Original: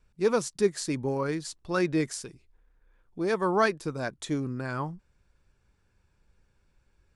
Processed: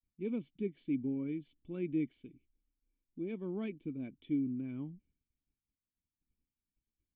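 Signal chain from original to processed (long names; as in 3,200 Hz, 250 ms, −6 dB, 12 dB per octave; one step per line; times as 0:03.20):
downward expander −55 dBFS
formant resonators in series i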